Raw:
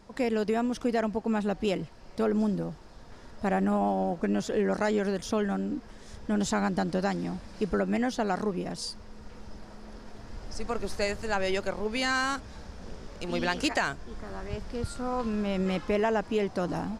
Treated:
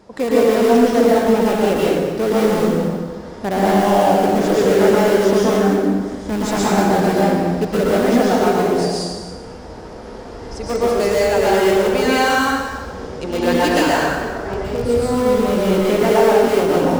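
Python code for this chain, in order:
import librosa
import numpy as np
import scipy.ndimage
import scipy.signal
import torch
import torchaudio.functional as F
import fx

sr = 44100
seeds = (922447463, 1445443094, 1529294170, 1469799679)

p1 = scipy.signal.sosfilt(scipy.signal.butter(2, 54.0, 'highpass', fs=sr, output='sos'), x)
p2 = fx.peak_eq(p1, sr, hz=460.0, db=7.0, octaves=1.7)
p3 = (np.mod(10.0 ** (20.0 / 20.0) * p2 + 1.0, 2.0) - 1.0) / 10.0 ** (20.0 / 20.0)
p4 = p2 + F.gain(torch.from_numpy(p3), -11.0).numpy()
p5 = p4 + 10.0 ** (-14.5 / 20.0) * np.pad(p4, (int(228 * sr / 1000.0), 0))[:len(p4)]
p6 = fx.rev_plate(p5, sr, seeds[0], rt60_s=1.4, hf_ratio=0.75, predelay_ms=105, drr_db=-6.5)
y = F.gain(torch.from_numpy(p6), 1.5).numpy()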